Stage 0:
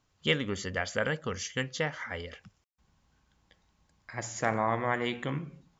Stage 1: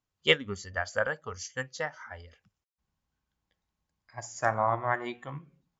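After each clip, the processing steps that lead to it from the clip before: spectral noise reduction 11 dB; upward expander 1.5:1, over -40 dBFS; gain +5.5 dB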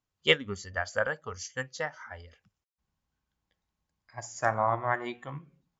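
nothing audible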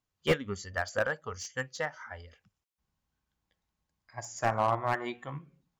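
slew limiter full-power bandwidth 100 Hz

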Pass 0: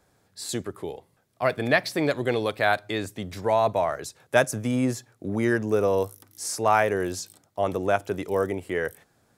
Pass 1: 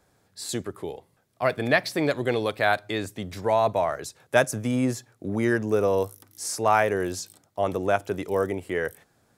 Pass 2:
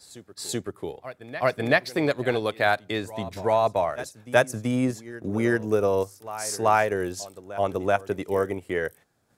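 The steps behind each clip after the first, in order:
nothing audible
reverse echo 0.382 s -15 dB; transient shaper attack +1 dB, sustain -6 dB

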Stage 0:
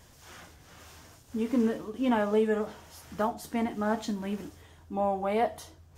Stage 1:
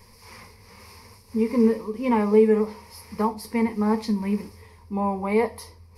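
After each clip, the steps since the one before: ripple EQ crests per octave 0.88, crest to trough 16 dB; gain +1.5 dB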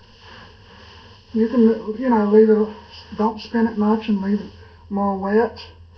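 nonlinear frequency compression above 1000 Hz 1.5:1; gain +4.5 dB

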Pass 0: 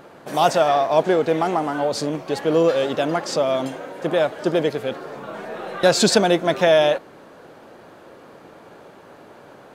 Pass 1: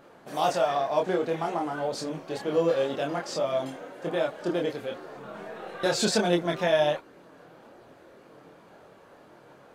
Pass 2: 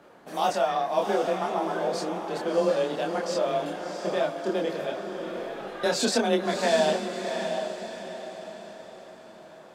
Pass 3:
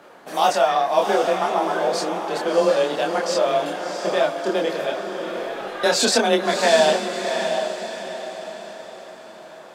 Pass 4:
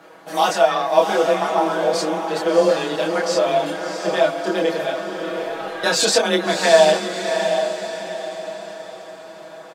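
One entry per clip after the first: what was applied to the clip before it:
chorus voices 4, 0.49 Hz, delay 26 ms, depth 3.4 ms; gain -5 dB
diffused feedback echo 0.684 s, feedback 43%, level -6 dB; frequency shift +24 Hz
low shelf 300 Hz -10 dB; gain +8.5 dB
comb 6.2 ms, depth 94%; gain -1 dB

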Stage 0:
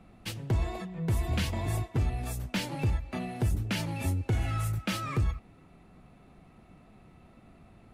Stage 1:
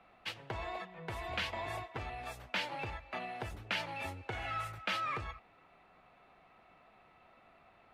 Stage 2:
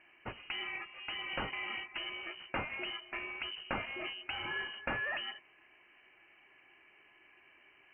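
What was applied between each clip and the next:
three-band isolator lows -20 dB, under 540 Hz, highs -18 dB, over 4100 Hz; gain +1.5 dB
inverted band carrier 3000 Hz

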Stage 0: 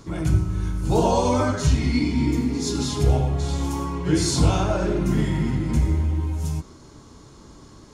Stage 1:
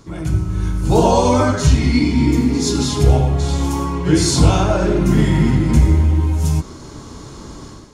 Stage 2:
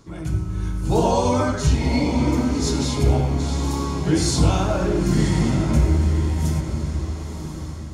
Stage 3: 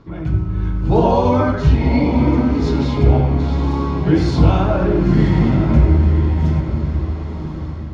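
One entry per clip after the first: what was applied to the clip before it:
AGC gain up to 12 dB
diffused feedback echo 0.997 s, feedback 40%, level -8.5 dB; gain -5.5 dB
air absorption 310 m; gain +5.5 dB

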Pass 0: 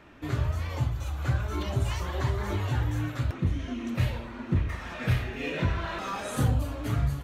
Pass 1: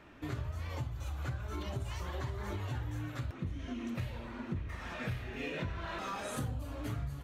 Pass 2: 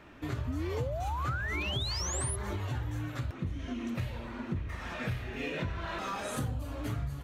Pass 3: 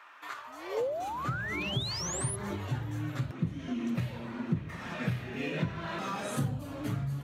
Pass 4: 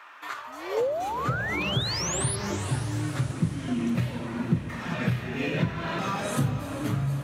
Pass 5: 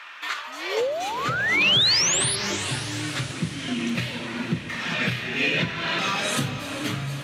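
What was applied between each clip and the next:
compressor 4:1, threshold -32 dBFS, peak gain reduction 10.5 dB; gain -3.5 dB
painted sound rise, 0.47–2.36, 240–11000 Hz -40 dBFS; gain +3 dB
high-pass sweep 1100 Hz -> 150 Hz, 0.42–1.35
diffused feedback echo 0.451 s, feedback 54%, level -11.5 dB; gain +5.5 dB
weighting filter D; gain +1.5 dB

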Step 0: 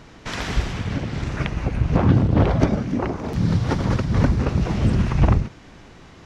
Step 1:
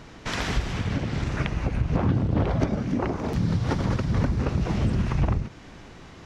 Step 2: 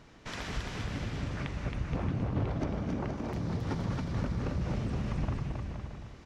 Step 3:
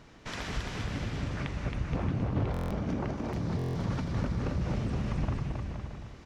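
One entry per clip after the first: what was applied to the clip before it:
compressor 2.5:1, threshold -22 dBFS, peak gain reduction 8.5 dB
resonator 590 Hz, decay 0.51 s, mix 60%; on a send: bouncing-ball echo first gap 0.27 s, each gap 0.75×, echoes 5; on the sum: gain -3 dB
stuck buffer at 2.52/3.57, samples 1024, times 7; gain +1.5 dB

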